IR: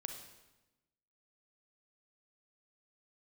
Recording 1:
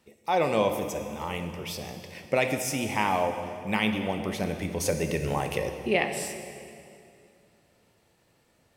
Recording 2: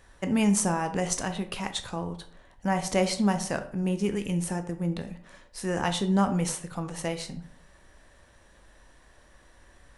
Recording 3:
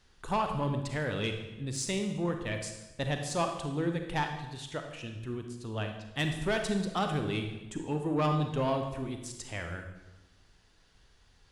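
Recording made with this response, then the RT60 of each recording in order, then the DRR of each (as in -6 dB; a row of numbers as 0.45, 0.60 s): 3; 2.5, 0.55, 1.0 s; 6.0, 7.5, 5.0 dB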